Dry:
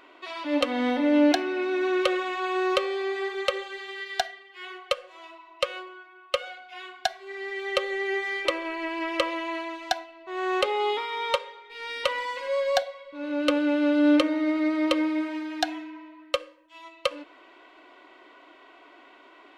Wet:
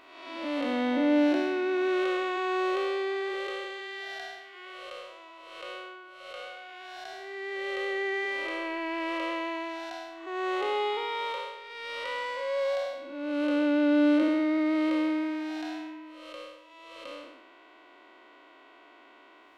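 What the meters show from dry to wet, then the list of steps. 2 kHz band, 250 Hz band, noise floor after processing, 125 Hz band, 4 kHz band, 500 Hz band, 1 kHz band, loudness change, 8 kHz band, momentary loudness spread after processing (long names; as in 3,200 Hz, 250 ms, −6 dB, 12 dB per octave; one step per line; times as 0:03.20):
−3.0 dB, −1.5 dB, −55 dBFS, can't be measured, −7.0 dB, −3.0 dB, −3.5 dB, −2.5 dB, below −10 dB, 19 LU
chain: spectrum smeared in time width 284 ms
level −1 dB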